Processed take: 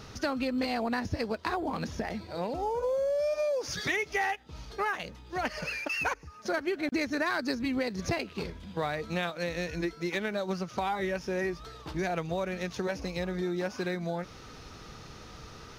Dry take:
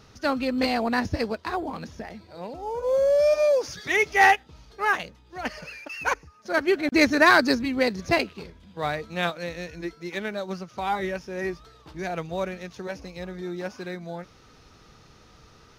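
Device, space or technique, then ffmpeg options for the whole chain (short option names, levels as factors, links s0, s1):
serial compression, leveller first: -af "acompressor=threshold=0.0447:ratio=2,acompressor=threshold=0.0178:ratio=4,volume=2"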